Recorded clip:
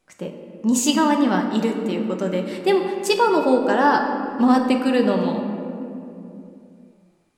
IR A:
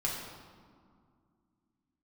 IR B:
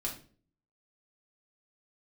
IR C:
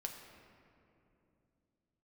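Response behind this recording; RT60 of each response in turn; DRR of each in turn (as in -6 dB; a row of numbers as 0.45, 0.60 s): C; 2.1, 0.45, 2.8 s; -3.5, -2.5, 2.0 dB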